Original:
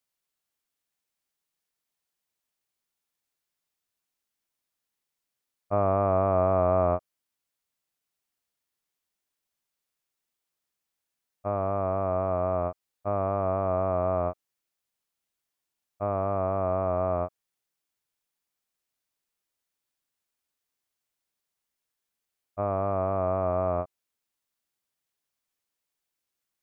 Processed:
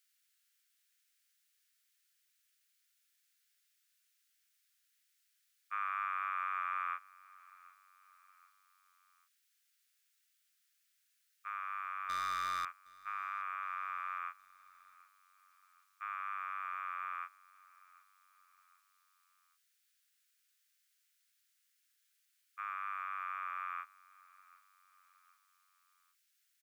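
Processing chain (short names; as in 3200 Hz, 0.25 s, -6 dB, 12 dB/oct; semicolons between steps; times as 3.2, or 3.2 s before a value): steep high-pass 1400 Hz 48 dB/oct; 12.09–12.65 sample leveller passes 3; on a send: feedback echo 0.765 s, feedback 50%, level -23 dB; on the sum: gain +8 dB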